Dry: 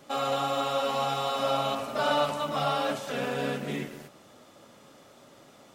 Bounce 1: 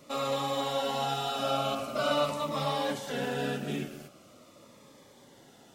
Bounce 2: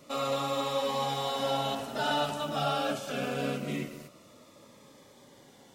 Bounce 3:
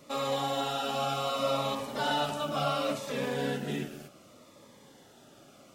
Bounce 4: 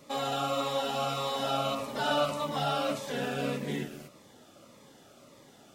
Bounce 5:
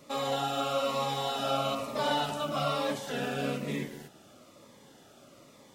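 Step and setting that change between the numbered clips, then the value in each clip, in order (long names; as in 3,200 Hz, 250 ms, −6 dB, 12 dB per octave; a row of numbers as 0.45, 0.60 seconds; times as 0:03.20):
phaser whose notches keep moving one way, speed: 0.44, 0.24, 0.68, 1.7, 1.1 Hertz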